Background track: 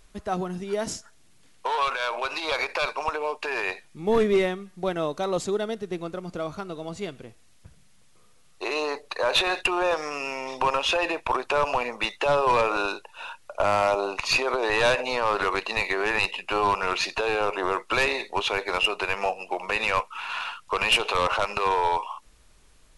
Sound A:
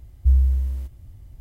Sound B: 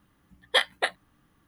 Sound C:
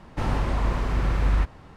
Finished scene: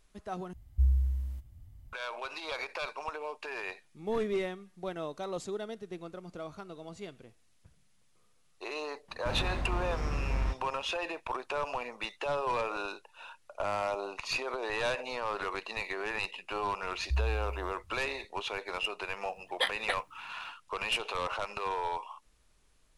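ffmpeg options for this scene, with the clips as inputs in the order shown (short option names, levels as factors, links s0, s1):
-filter_complex "[1:a]asplit=2[s0][s1];[0:a]volume=0.299[s2];[s0]equalizer=f=430:t=o:w=0.61:g=-10[s3];[2:a]dynaudnorm=f=160:g=3:m=2.82[s4];[s2]asplit=2[s5][s6];[s5]atrim=end=0.534[s7];[s3]atrim=end=1.4,asetpts=PTS-STARTPTS,volume=0.355[s8];[s6]atrim=start=1.926[s9];[3:a]atrim=end=1.76,asetpts=PTS-STARTPTS,volume=0.335,afade=t=in:d=0.004:c=hsin,afade=t=out:st=1.756:d=0.004:c=hsin,adelay=9080[s10];[s1]atrim=end=1.4,asetpts=PTS-STARTPTS,volume=0.2,afade=t=in:d=0.004:c=hsin,afade=t=out:st=1.396:d=0.004:c=hsin,adelay=16850[s11];[s4]atrim=end=1.47,asetpts=PTS-STARTPTS,volume=0.237,afade=t=in:d=0.004:c=hsin,afade=t=out:st=1.466:d=0.004:c=hsin,adelay=19060[s12];[s7][s8]acrossfade=d=0.004:c1=hsin:c2=hsin[s13];[s13][s9]acrossfade=d=0.004:c1=hsin:c2=hsin[s14];[s14][s10][s11][s12]amix=inputs=4:normalize=0"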